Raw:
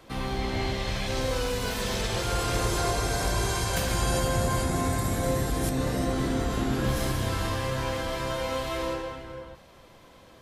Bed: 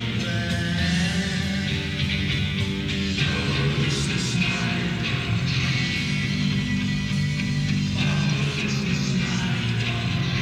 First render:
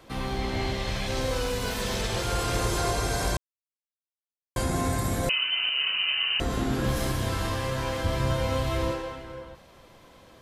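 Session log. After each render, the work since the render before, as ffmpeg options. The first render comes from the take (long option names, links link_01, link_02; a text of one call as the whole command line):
ffmpeg -i in.wav -filter_complex "[0:a]asettb=1/sr,asplit=3[link_01][link_02][link_03];[link_01]atrim=end=5.294[link_04];[link_02]atrim=start=5.29:end=6.4,asetpts=PTS-STARTPTS,afade=type=in:duration=0.004:curve=qsin,afade=type=out:start_time=1.106:duration=0.004:curve=qsin,lowpass=frequency=2600:width_type=q:width=0.5098,lowpass=frequency=2600:width_type=q:width=0.6013,lowpass=frequency=2600:width_type=q:width=0.9,lowpass=frequency=2600:width_type=q:width=2.563,afreqshift=-3100[link_05];[link_03]atrim=start=6.396[link_06];[link_04][link_05]acrossfade=duration=0.004:curve1=hsin:curve2=qsin[link_07];[link_07][link_06]acrossfade=duration=0.004:curve1=qsin:curve2=hsin,asettb=1/sr,asplit=3[link_08][link_09][link_10];[link_08]atrim=end=8.044[link_11];[link_09]atrim=start=8.04:end=8.92,asetpts=PTS-STARTPTS,afade=type=in:duration=0.004:curve=qsin,afade=type=out:start_time=0.876:duration=0.004:curve=qsin,equalizer=frequency=92:width_type=o:width=2.1:gain=13[link_12];[link_10]atrim=start=8.916[link_13];[link_11][link_12]acrossfade=duration=0.004:curve1=hsin:curve2=qsin[link_14];[link_14][link_13]acrossfade=duration=0.004:curve1=qsin:curve2=hsin,asplit=3[link_15][link_16][link_17];[link_15]atrim=end=3.37,asetpts=PTS-STARTPTS,afade=type=out:start_time=3.366:duration=0.004:curve=hsin[link_18];[link_16]atrim=start=3.37:end=4.56,asetpts=PTS-STARTPTS,volume=0[link_19];[link_17]atrim=start=4.56,asetpts=PTS-STARTPTS,afade=type=in:duration=0.004:curve=hsin[link_20];[link_18][link_19][link_20]concat=n=3:v=0:a=1" out.wav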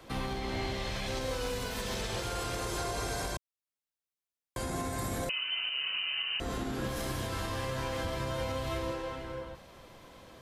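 ffmpeg -i in.wav -filter_complex "[0:a]acrossover=split=230[link_01][link_02];[link_01]acompressor=threshold=-30dB:ratio=6[link_03];[link_03][link_02]amix=inputs=2:normalize=0,alimiter=level_in=1dB:limit=-24dB:level=0:latency=1:release=332,volume=-1dB" out.wav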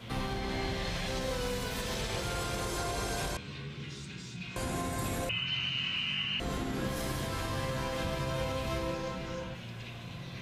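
ffmpeg -i in.wav -i bed.wav -filter_complex "[1:a]volume=-19.5dB[link_01];[0:a][link_01]amix=inputs=2:normalize=0" out.wav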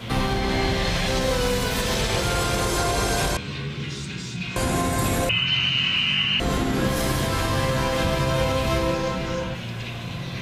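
ffmpeg -i in.wav -af "volume=11.5dB" out.wav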